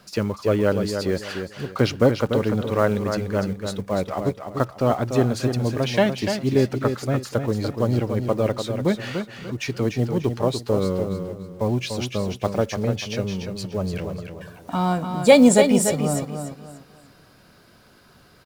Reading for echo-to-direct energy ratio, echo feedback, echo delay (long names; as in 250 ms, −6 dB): −6.5 dB, 30%, 293 ms